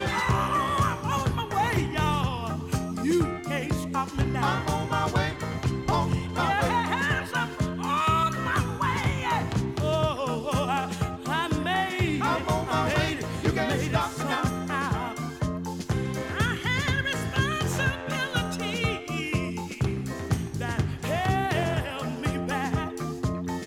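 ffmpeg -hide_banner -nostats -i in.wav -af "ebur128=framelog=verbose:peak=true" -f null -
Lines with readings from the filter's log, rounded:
Integrated loudness:
  I:         -27.2 LUFS
  Threshold: -37.2 LUFS
Loudness range:
  LRA:         2.5 LU
  Threshold: -47.2 LUFS
  LRA low:   -28.5 LUFS
  LRA high:  -26.0 LUFS
True peak:
  Peak:      -10.6 dBFS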